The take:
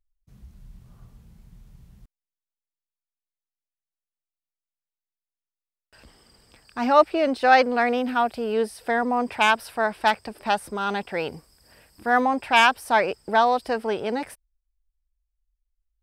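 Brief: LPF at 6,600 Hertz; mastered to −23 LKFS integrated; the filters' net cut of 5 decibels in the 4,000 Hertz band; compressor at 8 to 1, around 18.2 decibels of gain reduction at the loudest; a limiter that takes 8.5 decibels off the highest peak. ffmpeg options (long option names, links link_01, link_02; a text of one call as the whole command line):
ffmpeg -i in.wav -af "lowpass=6600,equalizer=frequency=4000:width_type=o:gain=-7,acompressor=threshold=-30dB:ratio=8,volume=15.5dB,alimiter=limit=-13dB:level=0:latency=1" out.wav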